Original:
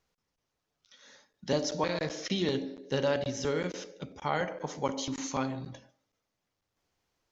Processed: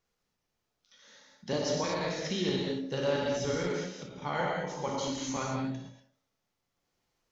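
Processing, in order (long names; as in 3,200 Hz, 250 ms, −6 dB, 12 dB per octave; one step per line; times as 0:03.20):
reverb whose tail is shaped and stops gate 260 ms flat, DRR −2.5 dB
every ending faded ahead of time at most 110 dB per second
level −4 dB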